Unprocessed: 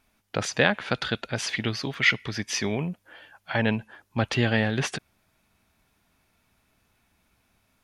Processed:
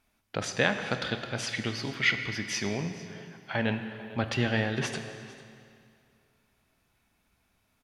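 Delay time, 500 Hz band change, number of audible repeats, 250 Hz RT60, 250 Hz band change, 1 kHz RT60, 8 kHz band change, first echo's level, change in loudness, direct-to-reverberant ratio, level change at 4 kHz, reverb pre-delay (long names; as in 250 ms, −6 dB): 449 ms, −4.0 dB, 1, 2.3 s, −4.0 dB, 2.3 s, −4.0 dB, −19.5 dB, −4.0 dB, 7.0 dB, −3.5 dB, 23 ms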